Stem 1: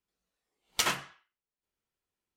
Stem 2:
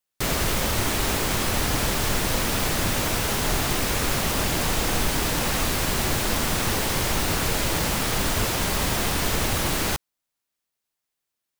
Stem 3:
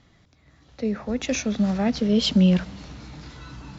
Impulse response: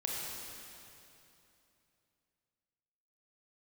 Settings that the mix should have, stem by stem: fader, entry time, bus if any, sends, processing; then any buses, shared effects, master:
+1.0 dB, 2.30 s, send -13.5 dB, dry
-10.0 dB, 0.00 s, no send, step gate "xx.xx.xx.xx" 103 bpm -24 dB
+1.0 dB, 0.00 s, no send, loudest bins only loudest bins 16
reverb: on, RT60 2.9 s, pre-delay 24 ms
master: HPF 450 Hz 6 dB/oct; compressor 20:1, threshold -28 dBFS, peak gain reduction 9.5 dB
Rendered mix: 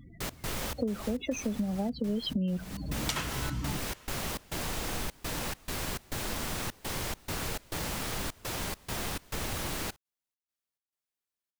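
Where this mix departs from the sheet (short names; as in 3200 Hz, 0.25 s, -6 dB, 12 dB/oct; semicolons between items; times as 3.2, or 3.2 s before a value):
stem 3 +1.0 dB -> +7.5 dB; master: missing HPF 450 Hz 6 dB/oct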